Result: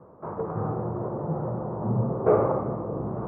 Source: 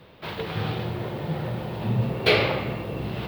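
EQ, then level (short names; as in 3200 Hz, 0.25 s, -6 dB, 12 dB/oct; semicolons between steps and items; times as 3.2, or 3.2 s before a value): elliptic low-pass 1200 Hz, stop band 70 dB; low shelf 82 Hz -11.5 dB; +2.5 dB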